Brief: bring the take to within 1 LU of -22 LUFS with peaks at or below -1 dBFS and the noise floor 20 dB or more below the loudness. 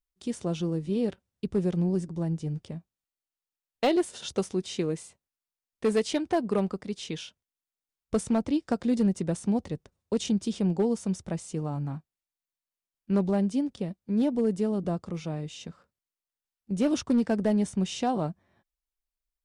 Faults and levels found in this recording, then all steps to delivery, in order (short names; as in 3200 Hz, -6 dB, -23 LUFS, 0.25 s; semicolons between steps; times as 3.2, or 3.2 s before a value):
clipped 0.5%; flat tops at -18.0 dBFS; loudness -29.0 LUFS; peak -18.0 dBFS; loudness target -22.0 LUFS
-> clip repair -18 dBFS; gain +7 dB